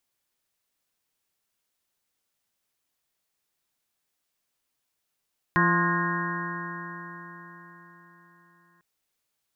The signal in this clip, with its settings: stretched partials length 3.25 s, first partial 171 Hz, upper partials -4/-20/-15/-13.5/1.5/-12/-6/-2/-2 dB, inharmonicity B 0.0017, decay 4.49 s, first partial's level -23.5 dB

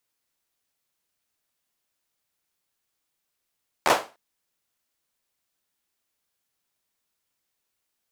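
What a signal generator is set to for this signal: hand clap length 0.30 s, apart 13 ms, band 690 Hz, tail 0.30 s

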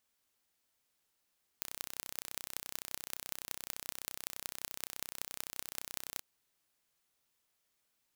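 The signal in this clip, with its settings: pulse train 31.7 per s, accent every 6, -9 dBFS 4.58 s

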